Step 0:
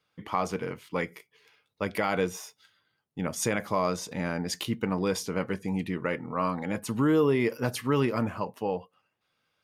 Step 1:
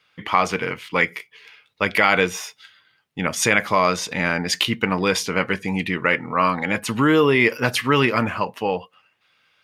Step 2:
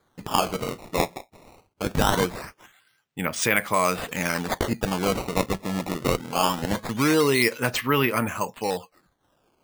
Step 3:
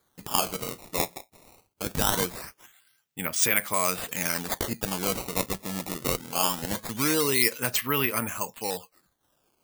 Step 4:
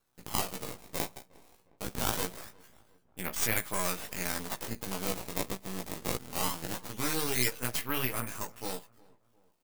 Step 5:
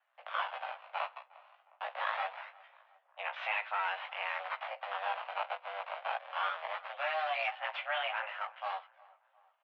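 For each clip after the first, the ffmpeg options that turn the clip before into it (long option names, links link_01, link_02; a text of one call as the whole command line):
ffmpeg -i in.wav -af "equalizer=frequency=2400:width_type=o:width=2.2:gain=12,volume=5dB" out.wav
ffmpeg -i in.wav -af "acrusher=samples=16:mix=1:aa=0.000001:lfo=1:lforange=25.6:lforate=0.22,volume=-4dB" out.wav
ffmpeg -i in.wav -af "crystalizer=i=2.5:c=0,volume=-6.5dB" out.wav
ffmpeg -i in.wav -filter_complex "[0:a]flanger=delay=15.5:depth=2.8:speed=1.6,aeval=exprs='max(val(0),0)':channel_layout=same,asplit=2[link_01][link_02];[link_02]adelay=357,lowpass=frequency=1700:poles=1,volume=-24dB,asplit=2[link_03][link_04];[link_04]adelay=357,lowpass=frequency=1700:poles=1,volume=0.52,asplit=2[link_05][link_06];[link_06]adelay=357,lowpass=frequency=1700:poles=1,volume=0.52[link_07];[link_01][link_03][link_05][link_07]amix=inputs=4:normalize=0" out.wav
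ffmpeg -i in.wav -af "asoftclip=type=tanh:threshold=-22dB,highpass=frequency=310:width_type=q:width=0.5412,highpass=frequency=310:width_type=q:width=1.307,lowpass=frequency=2800:width_type=q:width=0.5176,lowpass=frequency=2800:width_type=q:width=0.7071,lowpass=frequency=2800:width_type=q:width=1.932,afreqshift=310,volume=4dB" out.wav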